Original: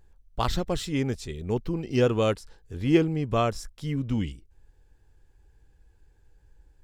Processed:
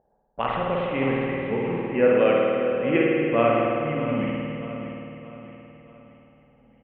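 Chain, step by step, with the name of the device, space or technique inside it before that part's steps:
0:01.54–0:02.11: Butterworth low-pass 2,600 Hz
envelope filter bass rig (envelope-controlled low-pass 680–2,800 Hz up, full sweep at −27.5 dBFS; loudspeaker in its box 75–2,200 Hz, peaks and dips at 98 Hz −5 dB, 220 Hz +6 dB, 330 Hz −4 dB, 540 Hz +7 dB, 1,900 Hz +3 dB)
parametric band 74 Hz −12 dB 2 octaves
repeating echo 625 ms, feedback 44%, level −11.5 dB
spring reverb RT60 2.5 s, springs 52 ms, chirp 55 ms, DRR −3.5 dB
level −1.5 dB

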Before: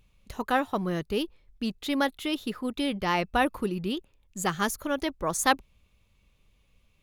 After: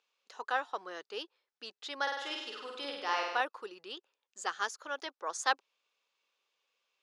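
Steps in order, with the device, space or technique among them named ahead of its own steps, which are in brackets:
0:02.02–0:03.41: flutter between parallel walls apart 8.5 metres, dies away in 0.97 s
phone speaker on a table (loudspeaker in its box 480–7,100 Hz, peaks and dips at 610 Hz −6 dB, 1,500 Hz +4 dB, 2,200 Hz −5 dB, 5,100 Hz +4 dB)
level −6 dB

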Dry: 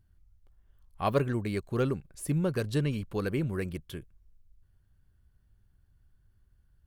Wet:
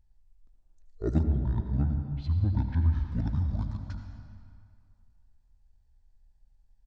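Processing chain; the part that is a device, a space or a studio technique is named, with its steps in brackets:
monster voice (pitch shifter −10 semitones; formants moved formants −5 semitones; low-shelf EQ 230 Hz +8 dB; convolution reverb RT60 2.2 s, pre-delay 68 ms, DRR 5 dB)
0:01.23–0:02.93: low-pass filter 1,800 Hz 6 dB per octave
level −4.5 dB

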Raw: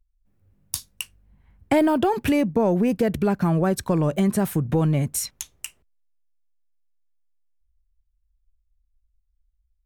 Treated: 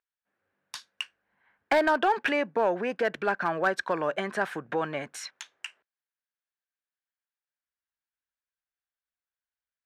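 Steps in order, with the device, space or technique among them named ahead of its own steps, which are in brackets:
megaphone (band-pass filter 610–3,400 Hz; parametric band 1,600 Hz +10 dB 0.39 octaves; hard clipping −17.5 dBFS, distortion −20 dB)
level +1 dB

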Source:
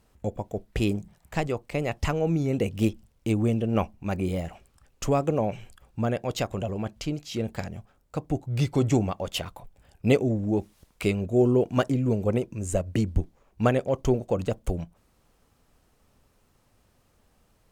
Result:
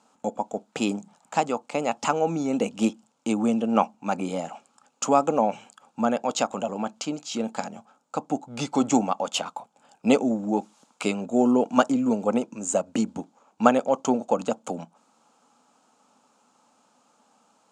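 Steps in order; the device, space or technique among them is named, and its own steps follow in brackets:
television speaker (loudspeaker in its box 220–8,900 Hz, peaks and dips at 240 Hz +5 dB, 370 Hz −9 dB, 850 Hz +10 dB, 1,300 Hz +7 dB, 1,900 Hz −9 dB, 7,000 Hz +8 dB)
level +3 dB

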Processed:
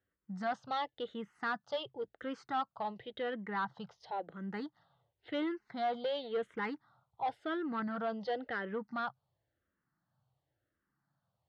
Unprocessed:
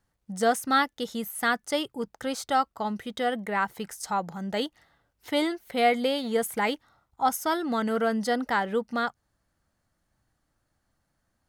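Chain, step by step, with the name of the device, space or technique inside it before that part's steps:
barber-pole phaser into a guitar amplifier (frequency shifter mixed with the dry sound −0.94 Hz; soft clipping −24.5 dBFS, distortion −12 dB; loudspeaker in its box 99–3,700 Hz, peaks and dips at 130 Hz +8 dB, 240 Hz −5 dB, 2,400 Hz −8 dB)
level −4 dB

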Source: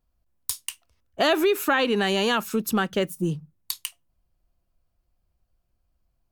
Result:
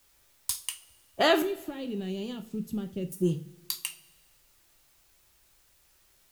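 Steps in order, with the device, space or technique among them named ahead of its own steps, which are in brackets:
0:01.42–0:03.12: drawn EQ curve 170 Hz 0 dB, 1,500 Hz −29 dB, 2,800 Hz −16 dB
plain cassette with noise reduction switched in (one half of a high-frequency compander decoder only; tape wow and flutter; white noise bed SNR 31 dB)
coupled-rooms reverb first 0.33 s, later 1.5 s, from −19 dB, DRR 5.5 dB
level −2.5 dB

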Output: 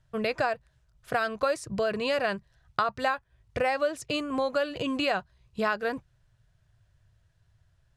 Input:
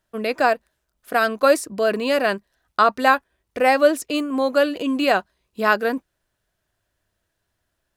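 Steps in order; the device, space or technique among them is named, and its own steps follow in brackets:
jukebox (low-pass filter 7,600 Hz 12 dB per octave; low shelf with overshoot 180 Hz +11.5 dB, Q 3; downward compressor 4 to 1, threshold −25 dBFS, peak gain reduction 13 dB)

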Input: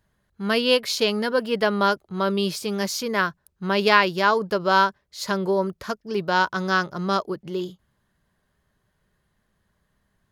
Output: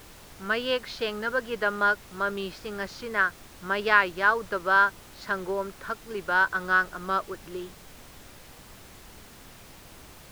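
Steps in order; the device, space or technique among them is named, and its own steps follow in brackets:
horn gramophone (band-pass filter 250–3,400 Hz; parametric band 1,500 Hz +10 dB 0.6 octaves; tape wow and flutter; pink noise bed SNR 19 dB)
level −7.5 dB

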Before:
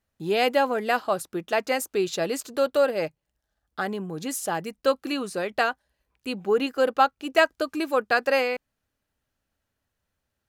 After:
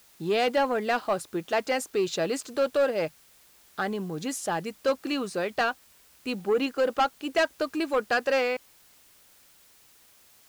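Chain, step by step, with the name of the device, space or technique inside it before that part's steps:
compact cassette (soft clipping −17 dBFS, distortion −13 dB; low-pass filter 8,700 Hz; tape wow and flutter 20 cents; white noise bed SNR 29 dB)

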